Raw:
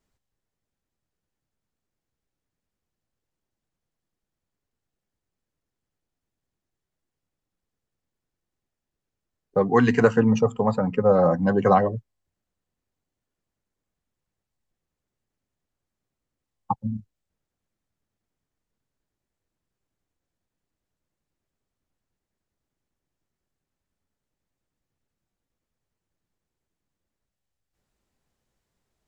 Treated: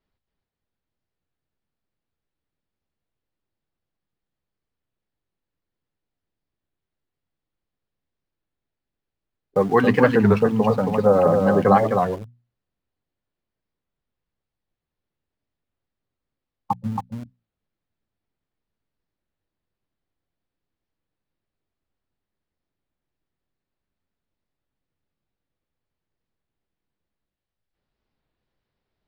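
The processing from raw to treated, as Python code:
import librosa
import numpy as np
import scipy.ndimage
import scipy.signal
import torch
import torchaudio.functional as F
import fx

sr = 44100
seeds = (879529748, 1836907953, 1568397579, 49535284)

p1 = scipy.signal.sosfilt(scipy.signal.butter(6, 4700.0, 'lowpass', fs=sr, output='sos'), x)
p2 = fx.hum_notches(p1, sr, base_hz=60, count=4)
p3 = p2 + 10.0 ** (-5.0 / 20.0) * np.pad(p2, (int(274 * sr / 1000.0), 0))[:len(p2)]
p4 = np.where(np.abs(p3) >= 10.0 ** (-31.5 / 20.0), p3, 0.0)
p5 = p3 + F.gain(torch.from_numpy(p4), -5.0).numpy()
p6 = fx.record_warp(p5, sr, rpm=33.33, depth_cents=160.0)
y = F.gain(torch.from_numpy(p6), -2.0).numpy()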